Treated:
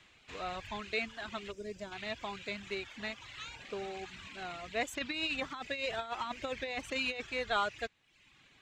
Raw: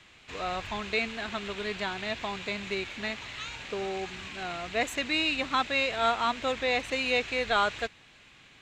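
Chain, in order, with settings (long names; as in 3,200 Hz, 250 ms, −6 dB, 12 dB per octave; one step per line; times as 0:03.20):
0:01.52–0:01.92: gain on a spectral selection 650–4,700 Hz −12 dB
reverb reduction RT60 0.8 s
0:04.93–0:07.27: compressor whose output falls as the input rises −30 dBFS, ratio −0.5
level −5.5 dB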